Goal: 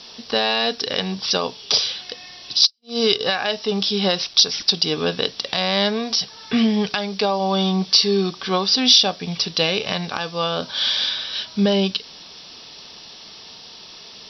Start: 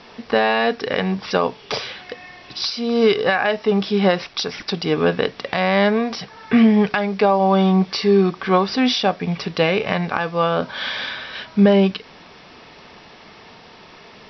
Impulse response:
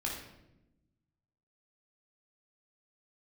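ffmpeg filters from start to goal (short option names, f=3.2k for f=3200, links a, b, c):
-filter_complex "[0:a]asplit=3[a][b][c];[a]afade=t=out:st=2.65:d=0.02[d];[b]agate=range=-54dB:threshold=-18dB:ratio=16:detection=peak,afade=t=in:st=2.65:d=0.02,afade=t=out:st=3.19:d=0.02[e];[c]afade=t=in:st=3.19:d=0.02[f];[d][e][f]amix=inputs=3:normalize=0,aexciter=amount=9.2:drive=1.6:freq=3.1k,volume=-5dB"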